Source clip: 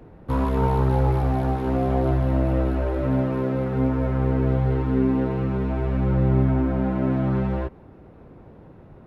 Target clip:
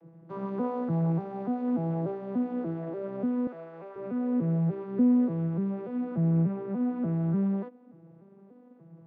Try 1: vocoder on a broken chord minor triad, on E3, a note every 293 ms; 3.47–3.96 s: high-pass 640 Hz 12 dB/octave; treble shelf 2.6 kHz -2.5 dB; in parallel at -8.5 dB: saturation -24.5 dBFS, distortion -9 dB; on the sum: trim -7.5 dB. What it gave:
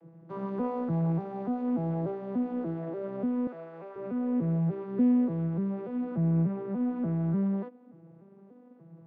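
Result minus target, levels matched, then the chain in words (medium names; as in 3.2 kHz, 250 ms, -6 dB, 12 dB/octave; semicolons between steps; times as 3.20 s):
saturation: distortion +12 dB
vocoder on a broken chord minor triad, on E3, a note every 293 ms; 3.47–3.96 s: high-pass 640 Hz 12 dB/octave; treble shelf 2.6 kHz -2.5 dB; in parallel at -8.5 dB: saturation -13.5 dBFS, distortion -20 dB; on the sum: trim -7.5 dB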